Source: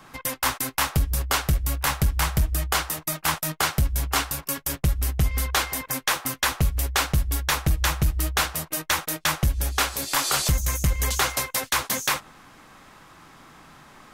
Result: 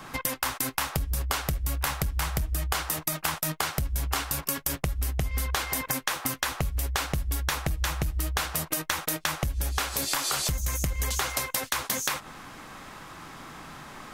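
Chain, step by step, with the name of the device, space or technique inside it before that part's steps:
serial compression, peaks first (downward compressor, threshold −27 dBFS, peak gain reduction 10 dB; downward compressor 3 to 1, threshold −31 dBFS, peak gain reduction 5.5 dB)
level +5.5 dB

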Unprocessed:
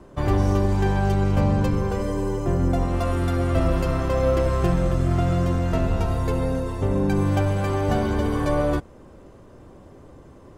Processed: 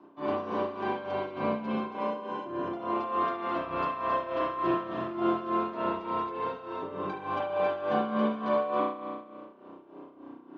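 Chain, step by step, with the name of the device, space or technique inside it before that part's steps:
high-pass filter 260 Hz 12 dB per octave
0:03.20–0:03.66: double-tracking delay 28 ms −5 dB
combo amplifier with spring reverb and tremolo (spring reverb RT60 1.7 s, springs 32 ms, chirp 45 ms, DRR −9 dB; amplitude tremolo 3.4 Hz, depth 69%; loudspeaker in its box 100–4,200 Hz, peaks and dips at 110 Hz −6 dB, 300 Hz +9 dB, 500 Hz −6 dB, 1,000 Hz +6 dB, 1,900 Hz −6 dB)
level −9 dB

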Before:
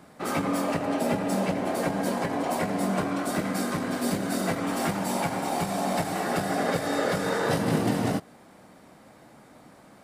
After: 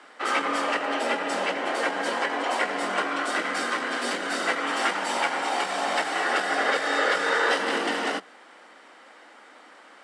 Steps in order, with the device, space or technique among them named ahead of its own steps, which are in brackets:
Chebyshev high-pass filter 170 Hz, order 10
phone speaker on a table (loudspeaker in its box 350–7,900 Hz, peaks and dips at 390 Hz −5 dB, 650 Hz −5 dB, 1,400 Hz +5 dB, 1,900 Hz +6 dB, 3,000 Hz +8 dB, 6,700 Hz −3 dB)
high-shelf EQ 11,000 Hz +4.5 dB
level +4 dB

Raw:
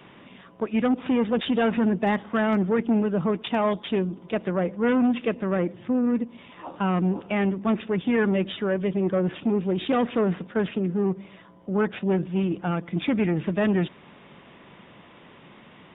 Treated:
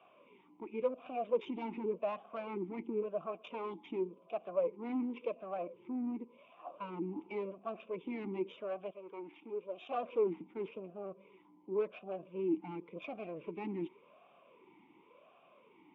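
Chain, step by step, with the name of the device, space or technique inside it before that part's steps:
talk box (tube saturation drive 20 dB, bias 0.6; formant filter swept between two vowels a-u 0.91 Hz)
0:08.90–0:09.89: high-pass filter 1,300 Hz → 590 Hz 6 dB per octave
level +1 dB

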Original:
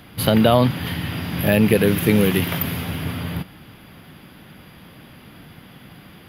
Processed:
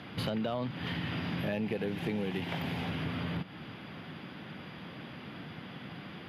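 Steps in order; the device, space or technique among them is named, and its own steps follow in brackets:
AM radio (band-pass filter 120–4,400 Hz; downward compressor 5 to 1, threshold −32 dBFS, peak gain reduction 18.5 dB; soft clipping −22 dBFS, distortion −24 dB)
0:01.52–0:02.86: thirty-one-band graphic EQ 800 Hz +7 dB, 1,250 Hz −5 dB, 8,000 Hz +4 dB

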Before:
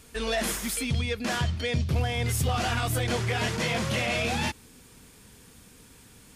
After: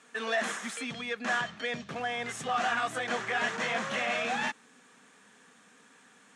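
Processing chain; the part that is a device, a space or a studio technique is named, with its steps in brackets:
television speaker (loudspeaker in its box 210–7,900 Hz, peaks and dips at 340 Hz −8 dB, 750 Hz +5 dB, 1,200 Hz +7 dB, 1,700 Hz +9 dB, 4,800 Hz −8 dB)
level −4.5 dB

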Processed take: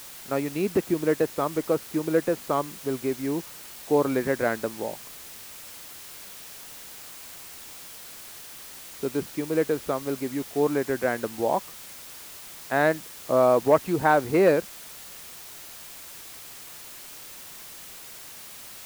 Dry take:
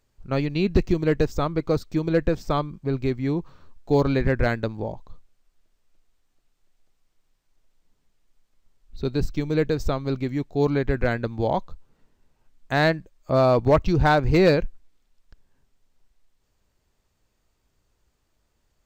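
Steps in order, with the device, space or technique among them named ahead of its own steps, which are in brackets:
wax cylinder (band-pass filter 270–2,000 Hz; tape wow and flutter; white noise bed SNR 15 dB)

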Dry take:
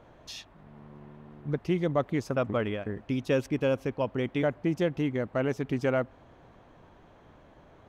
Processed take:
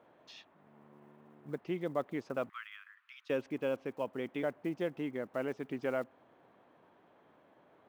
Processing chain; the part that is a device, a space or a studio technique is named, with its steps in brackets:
0:02.49–0:03.30: Butterworth high-pass 1,200 Hz 48 dB per octave
early digital voice recorder (band-pass filter 230–3,500 Hz; one scale factor per block 7 bits)
level −7 dB

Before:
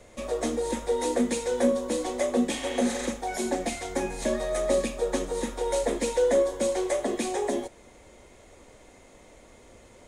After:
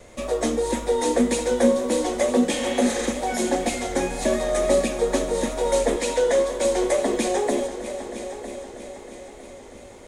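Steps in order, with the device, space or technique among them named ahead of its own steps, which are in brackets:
0:05.96–0:06.65: meter weighting curve A
multi-head tape echo (echo machine with several playback heads 319 ms, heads all three, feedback 54%, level −16 dB; tape wow and flutter 25 cents)
level +5 dB

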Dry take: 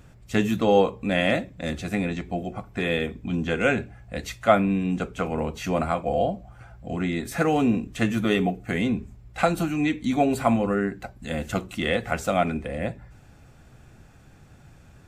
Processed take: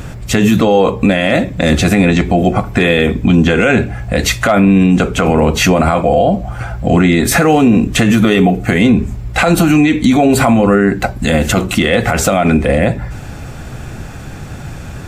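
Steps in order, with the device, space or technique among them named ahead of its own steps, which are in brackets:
loud club master (downward compressor 1.5 to 1, threshold −31 dBFS, peak gain reduction 7 dB; hard clipping −12.5 dBFS, distortion −35 dB; boost into a limiter +24.5 dB)
level −1 dB

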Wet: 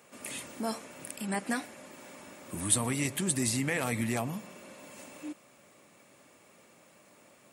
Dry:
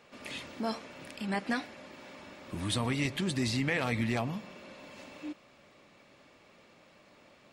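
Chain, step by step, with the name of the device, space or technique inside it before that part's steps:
budget condenser microphone (high-pass filter 96 Hz; high shelf with overshoot 6,400 Hz +13.5 dB, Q 1.5)

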